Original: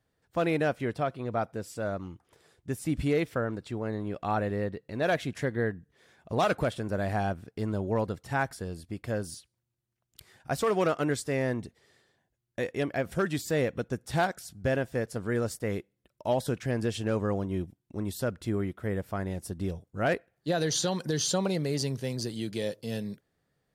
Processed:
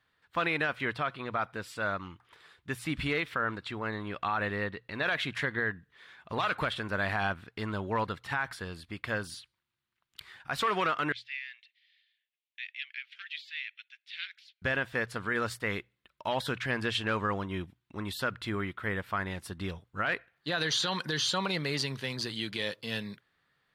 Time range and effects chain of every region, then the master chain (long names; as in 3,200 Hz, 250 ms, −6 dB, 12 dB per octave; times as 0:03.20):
0:11.12–0:14.62: Butterworth high-pass 2,300 Hz + high-frequency loss of the air 280 metres
whole clip: flat-topped bell 2,000 Hz +14 dB 2.5 octaves; brickwall limiter −15 dBFS; mains-hum notches 60/120 Hz; level −4.5 dB